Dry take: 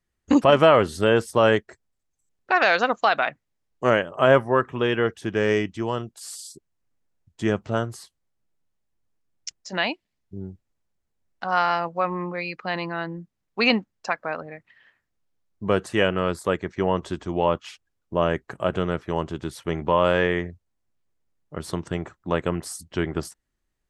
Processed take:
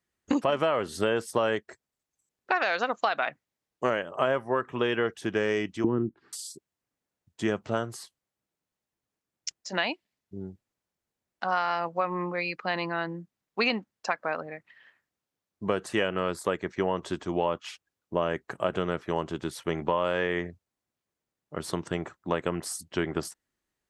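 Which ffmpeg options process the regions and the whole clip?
-filter_complex "[0:a]asettb=1/sr,asplit=3[a][b][c];[a]atrim=end=5.844[d];[b]atrim=start=5.84:end=6.33,asetpts=PTS-STARTPTS,afade=t=in:d=0.004:c=qsin,afade=t=out:st=0.486:d=0.004:c=qsin,lowpass=f=1.8k:w=0.5412,lowpass=f=1.8k:w=1.3066,lowshelf=f=440:t=q:w=3:g=11[e];[c]atrim=start=6.326[f];[d][e]acrossfade=d=0.004:c1=hsin:c2=qsin[g];[g][f]acrossfade=d=0.004:c1=qsin:c2=hsin,highpass=f=200:p=1,acompressor=threshold=-22dB:ratio=6"

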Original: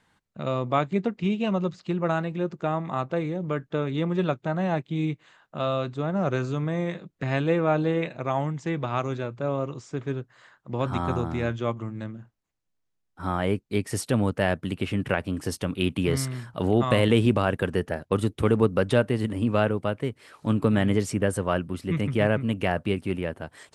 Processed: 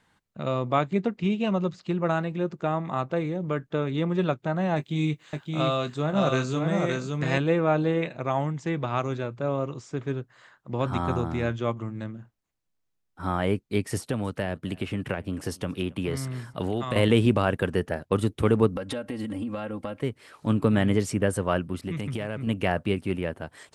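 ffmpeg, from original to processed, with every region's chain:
-filter_complex "[0:a]asettb=1/sr,asplit=3[a][b][c];[a]atrim=end=4.764[d];[b]atrim=start=4.76:end=7.38,asetpts=PTS-STARTPTS,afade=t=in:d=0.004:c=qsin,afade=t=out:st=2.616:d=0.004:c=qsin,highshelf=f=4k:g=11,asplit=2[e][f];[f]adelay=20,volume=-10.5dB[g];[e][g]amix=inputs=2:normalize=0,atrim=end_sample=115542,aecho=1:1:569:0.668,atrim=end_sample=115542[h];[c]atrim=start=7.376[i];[d][h]acrossfade=d=0.004:c1=hsin:c2=qsin[j];[j][i]acrossfade=d=0.004:c1=qsin:c2=hsin,asettb=1/sr,asplit=3[k][l][m];[k]atrim=end=13.974[n];[l]atrim=start=13.97:end=16.96,asetpts=PTS-STARTPTS,afade=t=in:d=0.004:c=qsin,afade=t=out:st=2.986:d=0.004:c=qsin,acrossover=split=530|1400[o][p][q];[o]acompressor=threshold=-27dB:ratio=4[r];[p]acompressor=threshold=-36dB:ratio=4[s];[q]acompressor=threshold=-38dB:ratio=4[t];[r][s][t]amix=inputs=3:normalize=0,aecho=1:1:273:0.0631,atrim=end_sample=131859[u];[m]atrim=start=16.956[v];[n][u]acrossfade=d=0.004:c1=hsin:c2=qsin[w];[w][v]acrossfade=d=0.004:c1=qsin:c2=hsin,asettb=1/sr,asplit=3[x][y][z];[x]atrim=end=18.754[aa];[y]atrim=start=18.75:end=20.03,asetpts=PTS-STARTPTS,afade=t=in:d=0.004:c=qsin,afade=t=out:st=1.276:d=0.004:c=qsin,aecho=1:1:3.7:0.79,atrim=end_sample=56448,acompressor=threshold=-28dB:ratio=10:attack=3.2:release=140:knee=1:detection=peak[ab];[z]atrim=start=20.026[ac];[aa][ab]acrossfade=d=0.004:c1=hsin:c2=qsin[ad];[ad][ac]acrossfade=d=0.004:c1=qsin:c2=hsin,asettb=1/sr,asplit=3[ae][af][ag];[ae]atrim=end=21.814[ah];[af]atrim=start=21.81:end=22.47,asetpts=PTS-STARTPTS,afade=t=in:d=0.004:c=qsin,afade=t=out:st=0.656:d=0.004:c=qsin,acompressor=threshold=-26dB:ratio=10:attack=3.2:release=140:knee=1:detection=peak,adynamicequalizer=threshold=0.002:dfrequency=3000:dqfactor=0.7:tfrequency=3000:tqfactor=0.7:attack=5:release=100:ratio=0.375:range=3:mode=boostabove:tftype=highshelf[ai];[ag]atrim=start=22.466[aj];[ah][ai]acrossfade=d=0.004:c1=hsin:c2=qsin[ak];[ak][aj]acrossfade=d=0.004:c1=qsin:c2=hsin"

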